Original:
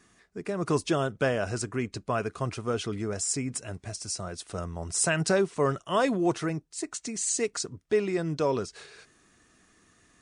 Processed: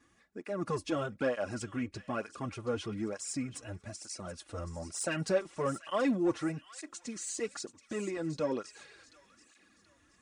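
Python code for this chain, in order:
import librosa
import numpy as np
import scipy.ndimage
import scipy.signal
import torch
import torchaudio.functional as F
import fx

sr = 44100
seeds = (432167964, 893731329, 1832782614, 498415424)

y = 10.0 ** (-18.0 / 20.0) * np.tanh(x / 10.0 ** (-18.0 / 20.0))
y = fx.high_shelf(y, sr, hz=3900.0, db=-7.0)
y = y + 0.47 * np.pad(y, (int(3.6 * sr / 1000.0), 0))[:len(y)]
y = fx.echo_wet_highpass(y, sr, ms=731, feedback_pct=38, hz=1900.0, wet_db=-13)
y = fx.flanger_cancel(y, sr, hz=1.1, depth_ms=5.5)
y = F.gain(torch.from_numpy(y), -2.0).numpy()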